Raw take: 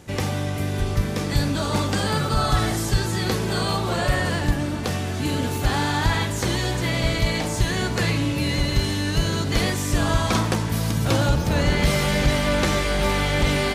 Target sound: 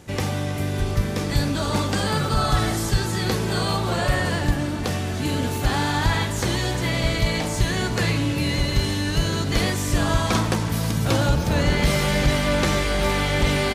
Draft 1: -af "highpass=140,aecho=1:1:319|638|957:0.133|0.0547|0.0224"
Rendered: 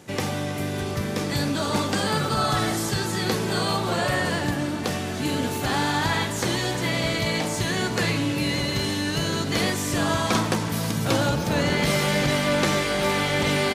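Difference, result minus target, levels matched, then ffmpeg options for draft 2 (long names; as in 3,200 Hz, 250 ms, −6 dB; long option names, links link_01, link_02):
125 Hz band −3.5 dB
-af "aecho=1:1:319|638|957:0.133|0.0547|0.0224"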